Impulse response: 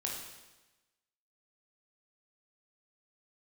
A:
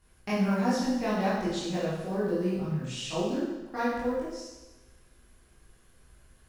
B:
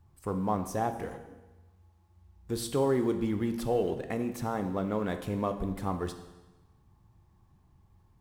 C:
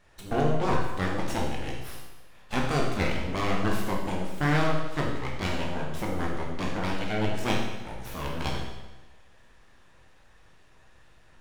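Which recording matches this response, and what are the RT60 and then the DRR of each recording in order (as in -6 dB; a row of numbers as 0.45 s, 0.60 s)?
C; 1.1 s, 1.1 s, 1.1 s; -9.5 dB, 7.5 dB, -2.0 dB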